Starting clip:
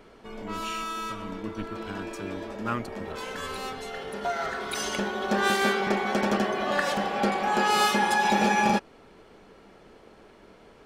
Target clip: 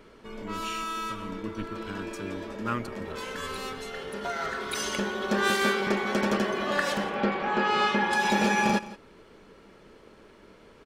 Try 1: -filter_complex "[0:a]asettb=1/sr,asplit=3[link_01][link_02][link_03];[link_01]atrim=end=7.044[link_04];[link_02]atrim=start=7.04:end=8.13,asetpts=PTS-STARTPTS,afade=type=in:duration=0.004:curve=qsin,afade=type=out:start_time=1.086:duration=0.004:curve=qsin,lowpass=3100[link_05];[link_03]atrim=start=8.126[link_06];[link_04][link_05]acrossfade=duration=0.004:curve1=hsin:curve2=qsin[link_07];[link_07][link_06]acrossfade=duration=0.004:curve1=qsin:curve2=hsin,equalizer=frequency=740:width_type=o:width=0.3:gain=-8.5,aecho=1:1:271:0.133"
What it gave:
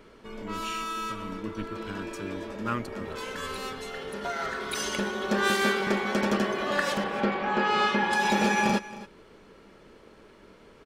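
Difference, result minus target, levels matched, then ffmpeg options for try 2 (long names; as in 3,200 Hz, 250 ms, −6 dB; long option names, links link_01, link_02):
echo 102 ms late
-filter_complex "[0:a]asettb=1/sr,asplit=3[link_01][link_02][link_03];[link_01]atrim=end=7.044[link_04];[link_02]atrim=start=7.04:end=8.13,asetpts=PTS-STARTPTS,afade=type=in:duration=0.004:curve=qsin,afade=type=out:start_time=1.086:duration=0.004:curve=qsin,lowpass=3100[link_05];[link_03]atrim=start=8.126[link_06];[link_04][link_05]acrossfade=duration=0.004:curve1=hsin:curve2=qsin[link_07];[link_07][link_06]acrossfade=duration=0.004:curve1=qsin:curve2=hsin,equalizer=frequency=740:width_type=o:width=0.3:gain=-8.5,aecho=1:1:169:0.133"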